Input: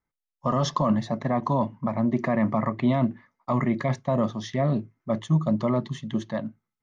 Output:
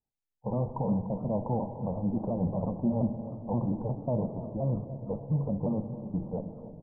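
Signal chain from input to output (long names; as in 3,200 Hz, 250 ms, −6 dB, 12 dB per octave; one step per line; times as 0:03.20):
pitch shifter swept by a sawtooth −4 semitones, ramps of 177 ms
in parallel at −10 dB: comparator with hysteresis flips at −27 dBFS
on the sum: Butterworth low-pass 880 Hz 48 dB per octave
on a send: repeating echo 294 ms, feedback 52%, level −15 dB
on the sum: four-comb reverb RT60 1.9 s, DRR 9 dB
feedback echo with a swinging delay time 314 ms, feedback 77%, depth 149 cents, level −19 dB
level −6 dB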